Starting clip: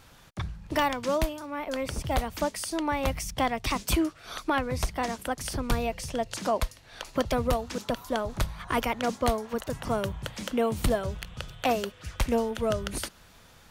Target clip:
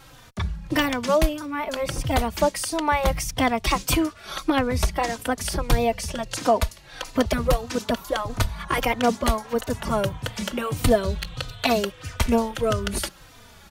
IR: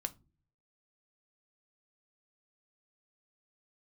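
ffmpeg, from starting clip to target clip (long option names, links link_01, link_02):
-filter_complex "[0:a]asettb=1/sr,asplit=3[link_01][link_02][link_03];[link_01]atrim=end=10.974[link_04];[link_02]atrim=start=10.97:end=11.79,asetpts=PTS-STARTPTS,afade=type=in:duration=0.004:curve=qsin,afade=type=out:start_time=0.816:duration=0.004:curve=qsin,equalizer=frequency=4100:width=6:gain=11[link_05];[link_03]atrim=start=11.786[link_06];[link_04][link_05]acrossfade=duration=0.004:curve1=hsin:curve2=qsin[link_07];[link_07][link_06]acrossfade=duration=0.004:curve1=qsin:curve2=hsin,asplit=2[link_08][link_09];[link_09]adelay=3.2,afreqshift=-1.6[link_10];[link_08][link_10]amix=inputs=2:normalize=1,volume=9dB"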